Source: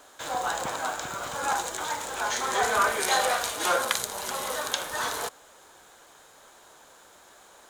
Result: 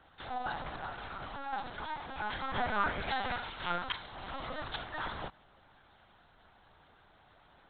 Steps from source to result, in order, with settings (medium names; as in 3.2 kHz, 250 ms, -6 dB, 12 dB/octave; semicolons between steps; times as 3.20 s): 3.10–4.18 s: high-pass 710 Hz 6 dB/octave; LPC vocoder at 8 kHz pitch kept; 0.59–1.53 s: compression, threshold -29 dBFS, peak gain reduction 7 dB; trim -7.5 dB